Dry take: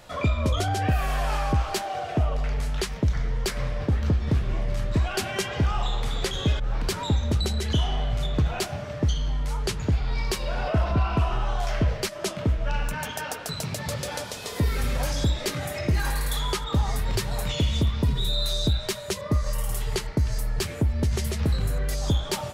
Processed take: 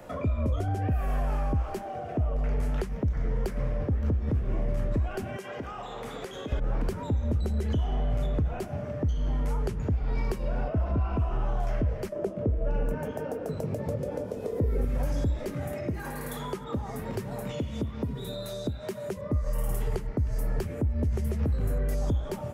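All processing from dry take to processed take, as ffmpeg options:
ffmpeg -i in.wav -filter_complex "[0:a]asettb=1/sr,asplit=3[link_01][link_02][link_03];[link_01]atrim=end=5.364[link_04];[link_02]atrim=start=5.36:end=6.52,asetpts=PTS-STARTPTS,afade=type=in:duration=0.004:curve=qsin,afade=type=out:start_time=1.156:duration=0.004:curve=qsin,highpass=frequency=550:poles=1,acompressor=threshold=-31dB:ratio=6:attack=3.2:release=140:knee=1:detection=peak,bandreject=frequency=850:width=28[link_05];[link_03]atrim=start=6.516[link_06];[link_04][link_05]acrossfade=duration=0.004:curve1=hsin:curve2=qsin[link_07];[link_07][link_06]acrossfade=duration=0.004:curve1=qsin:curve2=hsin,asettb=1/sr,asplit=3[link_08][link_09][link_10];[link_08]atrim=end=12.124[link_11];[link_09]atrim=start=12.12:end=14.85,asetpts=PTS-STARTPTS,afade=type=in:duration=0.004:curve=qsin,afade=type=out:start_time=2.726:duration=0.004:curve=qsin,equalizer=frequency=460:width=1:gain=14,asplit=2[link_12][link_13];[link_13]adelay=20,volume=-11dB[link_14];[link_12][link_14]amix=inputs=2:normalize=0,atrim=end_sample=120393[link_15];[link_10]atrim=start=14.846[link_16];[link_11][link_15]acrossfade=duration=0.004:curve1=hsin:curve2=qsin[link_17];[link_17][link_16]acrossfade=duration=0.004:curve1=qsin:curve2=hsin,asettb=1/sr,asplit=3[link_18][link_19][link_20];[link_18]atrim=end=15.734[link_21];[link_19]atrim=start=15.73:end=19.16,asetpts=PTS-STARTPTS,afade=type=in:duration=0.004:curve=qsin,afade=type=out:start_time=3.426:duration=0.004:curve=qsin,acompressor=mode=upward:threshold=-25dB:ratio=2.5:attack=3.2:release=140:knee=2.83:detection=peak,highpass=140[link_22];[link_20]atrim=start=19.156[link_23];[link_21][link_22]acrossfade=duration=0.004:curve1=hsin:curve2=qsin[link_24];[link_24][link_23]acrossfade=duration=0.004:curve1=qsin:curve2=hsin,equalizer=frequency=250:width_type=o:width=1:gain=8,equalizer=frequency=500:width_type=o:width=1:gain=6,equalizer=frequency=4000:width_type=o:width=1:gain=-11,equalizer=frequency=8000:width_type=o:width=1:gain=-4,acrossover=split=110|240[link_25][link_26][link_27];[link_25]acompressor=threshold=-24dB:ratio=4[link_28];[link_26]acompressor=threshold=-39dB:ratio=4[link_29];[link_27]acompressor=threshold=-36dB:ratio=4[link_30];[link_28][link_29][link_30]amix=inputs=3:normalize=0" out.wav

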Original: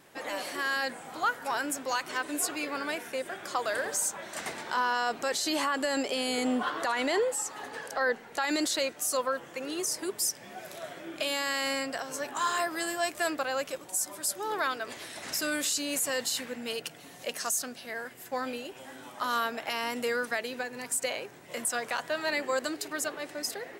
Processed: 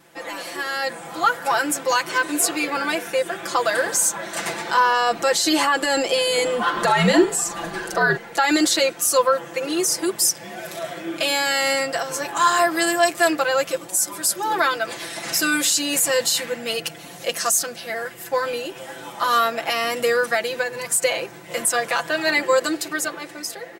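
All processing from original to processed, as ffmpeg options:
ffmpeg -i in.wav -filter_complex "[0:a]asettb=1/sr,asplit=3[link_01][link_02][link_03];[link_01]atrim=end=6.764[link_04];[link_02]atrim=start=6.76:end=8.17,asetpts=PTS-STARTPTS,afade=type=in:duration=0.004:curve=qsin,afade=type=out:start_time=1.406:duration=0.004:curve=qsin,lowshelf=frequency=210:gain=5.5,afreqshift=-84,asplit=2[link_05][link_06];[link_06]adelay=43,volume=-10dB[link_07];[link_05][link_07]amix=inputs=2:normalize=0,atrim=end_sample=62181[link_08];[link_03]atrim=start=8.166[link_09];[link_04][link_08]acrossfade=duration=0.004:curve1=hsin:curve2=qsin[link_10];[link_10][link_09]acrossfade=duration=0.004:curve1=qsin:curve2=hsin,aecho=1:1:5.9:0.97,dynaudnorm=framelen=110:gausssize=17:maxgain=6dB,volume=1.5dB" out.wav

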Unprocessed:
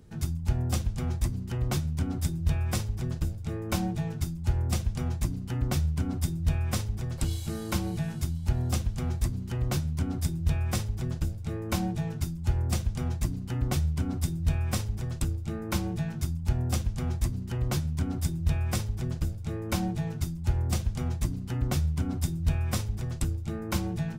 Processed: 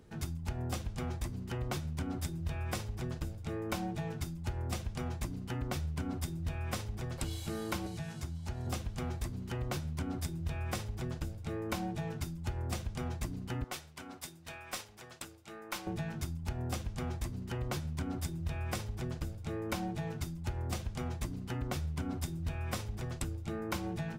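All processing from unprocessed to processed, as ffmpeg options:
ffmpeg -i in.wav -filter_complex "[0:a]asettb=1/sr,asplit=3[link_01][link_02][link_03];[link_01]atrim=end=7.864[link_04];[link_02]atrim=start=7.86:end=8.67,asetpts=PTS-STARTPTS,afade=type=in:duration=0.004:curve=qsin,afade=type=out:start_time=0.806:duration=0.004:curve=qsin,highpass=42,equalizer=frequency=6200:width_type=o:width=1.8:gain=8.5,acrossover=split=140|450|2000[link_05][link_06][link_07][link_08];[link_05]acompressor=threshold=-29dB:ratio=3[link_09];[link_06]acompressor=threshold=-44dB:ratio=3[link_10];[link_07]acompressor=threshold=-51dB:ratio=3[link_11];[link_08]acompressor=threshold=-52dB:ratio=3[link_12];[link_09][link_10][link_11][link_12]amix=inputs=4:normalize=0[link_13];[link_03]atrim=start=8.666[link_14];[link_04][link_13]acrossfade=duration=0.004:curve1=hsin:curve2=qsin[link_15];[link_15][link_14]acrossfade=duration=0.004:curve1=qsin:curve2=hsin,asettb=1/sr,asplit=3[link_16][link_17][link_18];[link_16]atrim=end=13.644[link_19];[link_17]atrim=start=13.64:end=15.87,asetpts=PTS-STARTPTS,afade=type=in:duration=0.004:curve=qsin,afade=type=out:start_time=2.226:duration=0.004:curve=qsin,highpass=frequency=1000:poles=1,aeval=exprs='(tanh(15.8*val(0)+0.5)-tanh(0.5))/15.8':channel_layout=same[link_20];[link_18]atrim=start=15.866[link_21];[link_19][link_20]acrossfade=duration=0.004:curve1=hsin:curve2=qsin[link_22];[link_22][link_21]acrossfade=duration=0.004:curve1=qsin:curve2=hsin,bass=frequency=250:gain=-8,treble=frequency=4000:gain=-5,acompressor=threshold=-33dB:ratio=6,volume=1dB" out.wav

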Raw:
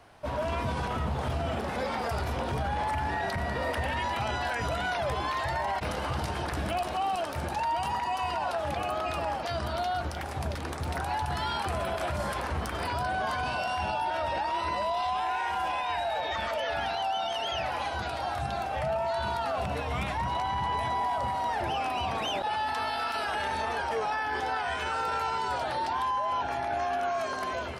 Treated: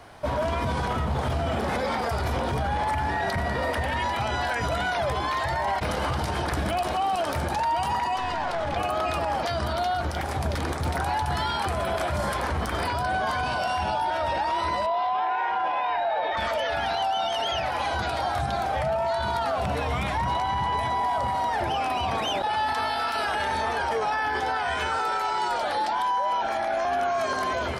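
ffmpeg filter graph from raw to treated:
ffmpeg -i in.wav -filter_complex "[0:a]asettb=1/sr,asplit=3[link_01][link_02][link_03];[link_01]atrim=end=8.164[link_04];[link_02]atrim=start=8.16:end=8.77,asetpts=PTS-STARTPTS,afade=type=in:duration=0.004:curve=qsin,afade=type=out:start_time=0.606:duration=0.004:curve=qsin,aeval=exprs='clip(val(0),-1,0.0178)':channel_layout=same,adynamicsmooth=sensitivity=5:basefreq=7100[link_05];[link_03]atrim=start=8.766[link_06];[link_04][link_05]acrossfade=duration=0.004:curve1=hsin:curve2=qsin[link_07];[link_07][link_06]acrossfade=duration=0.004:curve1=qsin:curve2=hsin,asettb=1/sr,asplit=3[link_08][link_09][link_10];[link_08]atrim=end=14.864[link_11];[link_09]atrim=start=14.86:end=16.37,asetpts=PTS-STARTPTS,afade=type=in:duration=0.004:curve=qsin,afade=type=out:start_time=1.506:duration=0.004:curve=qsin,highpass=470,lowpass=4600,aemphasis=mode=reproduction:type=riaa[link_12];[link_10]atrim=start=16.366[link_13];[link_11][link_12]acrossfade=duration=0.004:curve1=hsin:curve2=qsin[link_14];[link_14][link_13]acrossfade=duration=0.004:curve1=qsin:curve2=hsin,asettb=1/sr,asplit=3[link_15][link_16][link_17];[link_15]atrim=end=24.994[link_18];[link_16]atrim=start=24.99:end=26.85,asetpts=PTS-STARTPTS,afade=type=in:duration=0.004:curve=qsin,afade=type=out:start_time=1.856:duration=0.004:curve=qsin,highpass=frequency=390:poles=1,afreqshift=-35[link_19];[link_17]atrim=start=26.846[link_20];[link_18][link_19]acrossfade=duration=0.004:curve1=hsin:curve2=qsin[link_21];[link_21][link_20]acrossfade=duration=0.004:curve1=qsin:curve2=hsin,bandreject=frequency=2700:width=16,alimiter=level_in=2.5dB:limit=-24dB:level=0:latency=1,volume=-2.5dB,volume=8dB" out.wav

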